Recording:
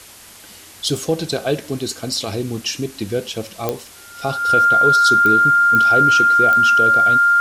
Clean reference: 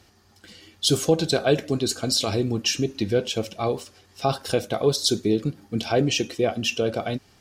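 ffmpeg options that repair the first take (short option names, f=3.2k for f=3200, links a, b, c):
-af "adeclick=t=4,bandreject=f=1.4k:w=30,afwtdn=0.01"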